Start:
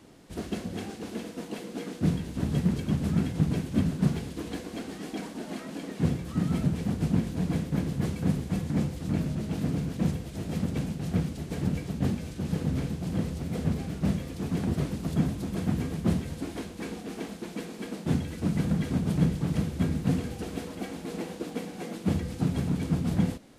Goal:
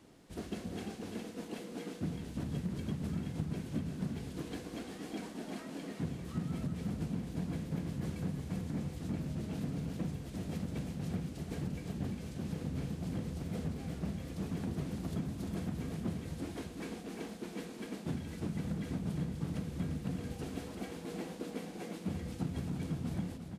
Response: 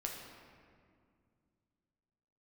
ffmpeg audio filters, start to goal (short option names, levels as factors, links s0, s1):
-af "acompressor=threshold=0.0447:ratio=6,aecho=1:1:345:0.398,volume=0.473"